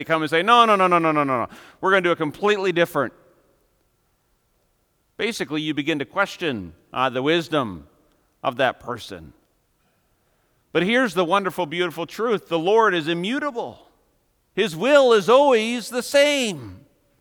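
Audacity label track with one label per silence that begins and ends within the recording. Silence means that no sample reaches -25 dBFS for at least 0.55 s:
3.080000	5.200000	silence
7.740000	8.450000	silence
9.150000	10.750000	silence
13.700000	14.580000	silence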